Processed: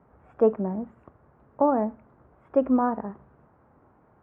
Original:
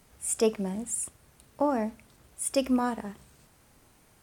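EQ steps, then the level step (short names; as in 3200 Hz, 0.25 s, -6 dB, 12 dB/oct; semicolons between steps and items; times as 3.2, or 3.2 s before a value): HPF 56 Hz; LPF 1300 Hz 24 dB/oct; low shelf 250 Hz -5 dB; +6.0 dB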